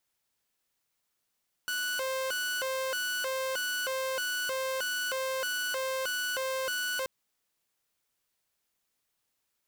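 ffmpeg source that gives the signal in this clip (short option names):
-f lavfi -i "aevalsrc='0.0422*(2*mod((1003*t+477/1.6*(0.5-abs(mod(1.6*t,1)-0.5))),1)-1)':d=5.38:s=44100"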